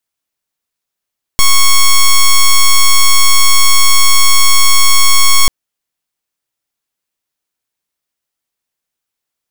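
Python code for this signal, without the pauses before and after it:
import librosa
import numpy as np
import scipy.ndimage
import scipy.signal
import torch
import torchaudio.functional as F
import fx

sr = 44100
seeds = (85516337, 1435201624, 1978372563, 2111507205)

y = fx.pulse(sr, length_s=4.09, hz=1100.0, level_db=-5.0, duty_pct=6)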